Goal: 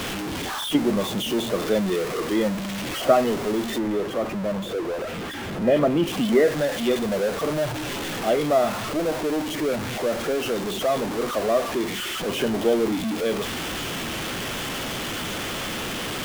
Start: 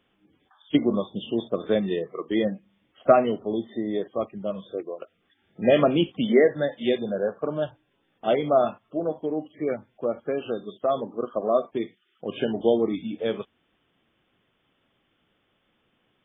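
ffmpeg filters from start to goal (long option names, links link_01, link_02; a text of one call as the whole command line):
ffmpeg -i in.wav -filter_complex "[0:a]aeval=exprs='val(0)+0.5*0.0841*sgn(val(0))':channel_layout=same,asettb=1/sr,asplit=3[link_01][link_02][link_03];[link_01]atrim=end=3.784[link_04];[link_02]atrim=start=3.78:end=6.07,asetpts=PTS-STARTPTS,afade=type=in:duration=0.004:curve=qsin,afade=type=out:start_time=2.286:duration=0.004:curve=qsin,highshelf=frequency=2600:gain=-10[link_05];[link_03]atrim=start=6.066[link_06];[link_04][link_05]acrossfade=duration=0.004:curve1=hsin:curve2=qsin[link_07];[link_07][link_06]acrossfade=duration=0.004:curve1=qsin:curve2=hsin,volume=-2dB" out.wav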